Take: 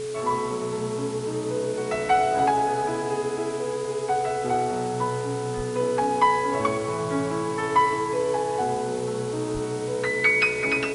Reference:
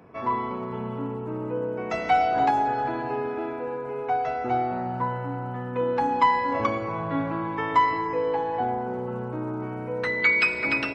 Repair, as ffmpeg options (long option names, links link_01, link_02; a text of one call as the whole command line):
ffmpeg -i in.wav -filter_complex "[0:a]bandreject=frequency=129.5:width_type=h:width=4,bandreject=frequency=259:width_type=h:width=4,bandreject=frequency=388.5:width_type=h:width=4,bandreject=frequency=518:width_type=h:width=4,bandreject=frequency=430:width=30,asplit=3[link_01][link_02][link_03];[link_01]afade=type=out:start_time=5.56:duration=0.02[link_04];[link_02]highpass=frequency=140:width=0.5412,highpass=frequency=140:width=1.3066,afade=type=in:start_time=5.56:duration=0.02,afade=type=out:start_time=5.68:duration=0.02[link_05];[link_03]afade=type=in:start_time=5.68:duration=0.02[link_06];[link_04][link_05][link_06]amix=inputs=3:normalize=0,asplit=3[link_07][link_08][link_09];[link_07]afade=type=out:start_time=9.53:duration=0.02[link_10];[link_08]highpass=frequency=140:width=0.5412,highpass=frequency=140:width=1.3066,afade=type=in:start_time=9.53:duration=0.02,afade=type=out:start_time=9.65:duration=0.02[link_11];[link_09]afade=type=in:start_time=9.65:duration=0.02[link_12];[link_10][link_11][link_12]amix=inputs=3:normalize=0,afwtdn=0.0089" out.wav